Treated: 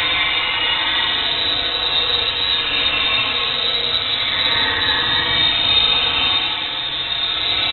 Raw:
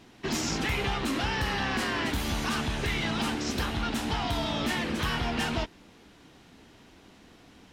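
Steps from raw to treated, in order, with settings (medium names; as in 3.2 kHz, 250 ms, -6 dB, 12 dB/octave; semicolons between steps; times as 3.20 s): comb 5 ms, depth 71%; Paulstretch 4.3×, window 0.25 s, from 1.82 s; reverse echo 64 ms -3 dB; frequency inversion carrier 3.9 kHz; trim +7.5 dB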